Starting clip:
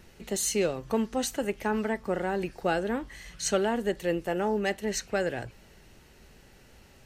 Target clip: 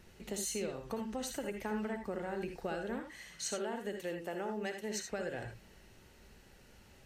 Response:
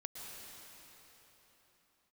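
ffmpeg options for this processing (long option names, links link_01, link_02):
-filter_complex "[0:a]asettb=1/sr,asplit=3[link_01][link_02][link_03];[link_01]atrim=end=3.004[link_04];[link_02]atrim=start=3:end=5.11,asetpts=PTS-STARTPTS,afade=type=in:duration=0.004:curve=qsin,afade=type=out:start_time=2.106:duration=0.004:curve=qsin,highpass=frequency=220:poles=1[link_05];[link_03]atrim=start=5.106[link_06];[link_04][link_05]acrossfade=duration=0.004:curve1=hsin:curve2=qsin[link_07];[link_07][link_06]acrossfade=duration=0.004:curve1=qsin:curve2=hsin,acompressor=threshold=-30dB:ratio=6[link_08];[1:a]atrim=start_sample=2205,afade=type=out:start_time=0.23:duration=0.01,atrim=end_sample=10584,asetrate=88200,aresample=44100[link_09];[link_08][link_09]afir=irnorm=-1:irlink=0,volume=6dB"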